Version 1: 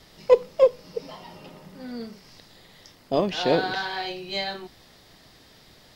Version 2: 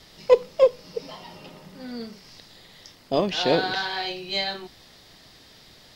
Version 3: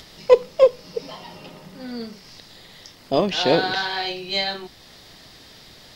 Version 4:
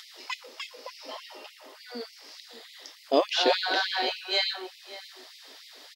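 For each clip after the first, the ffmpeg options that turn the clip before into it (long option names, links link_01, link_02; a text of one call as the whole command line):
ffmpeg -i in.wav -af "equalizer=frequency=4200:width_type=o:width=1.9:gain=4" out.wav
ffmpeg -i in.wav -af "acompressor=mode=upward:threshold=-44dB:ratio=2.5,volume=3dB" out.wav
ffmpeg -i in.wav -filter_complex "[0:a]asplit=2[link_01][link_02];[link_02]adelay=565.6,volume=-14dB,highshelf=frequency=4000:gain=-12.7[link_03];[link_01][link_03]amix=inputs=2:normalize=0,afftfilt=real='re*gte(b*sr/1024,220*pow(2000/220,0.5+0.5*sin(2*PI*3.4*pts/sr)))':imag='im*gte(b*sr/1024,220*pow(2000/220,0.5+0.5*sin(2*PI*3.4*pts/sr)))':win_size=1024:overlap=0.75,volume=-2dB" out.wav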